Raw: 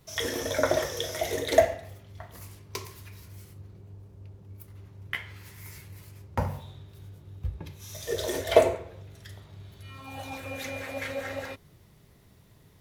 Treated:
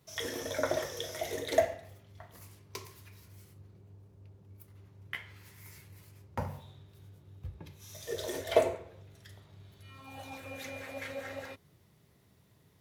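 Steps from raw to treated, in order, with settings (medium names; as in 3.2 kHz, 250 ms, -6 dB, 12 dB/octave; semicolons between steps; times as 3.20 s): high-pass 78 Hz; trim -6.5 dB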